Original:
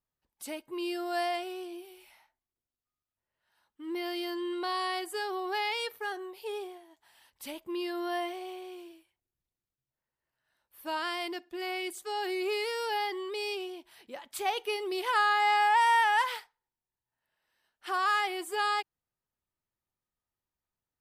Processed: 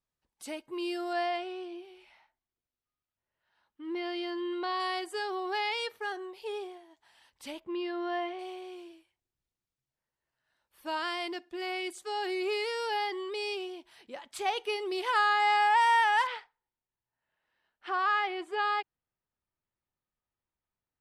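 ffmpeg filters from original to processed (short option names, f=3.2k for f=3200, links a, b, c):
-af "asetnsamples=n=441:p=0,asendcmd='1.13 lowpass f 4100;4.8 lowpass f 7600;7.6 lowpass f 3200;8.39 lowpass f 8300;16.27 lowpass f 3100',lowpass=8.9k"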